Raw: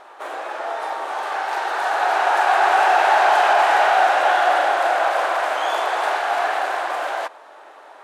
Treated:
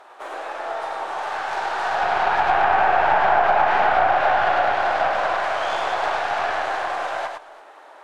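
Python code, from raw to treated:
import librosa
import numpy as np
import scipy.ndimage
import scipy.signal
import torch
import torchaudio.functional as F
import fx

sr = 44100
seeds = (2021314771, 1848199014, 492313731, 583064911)

p1 = fx.tracing_dist(x, sr, depth_ms=0.092)
p2 = fx.wow_flutter(p1, sr, seeds[0], rate_hz=2.1, depth_cents=21.0)
p3 = p2 + fx.echo_multitap(p2, sr, ms=(104, 337), db=(-4.5, -20.0), dry=0)
p4 = fx.env_lowpass_down(p3, sr, base_hz=1700.0, full_db=-9.0)
y = F.gain(torch.from_numpy(p4), -3.0).numpy()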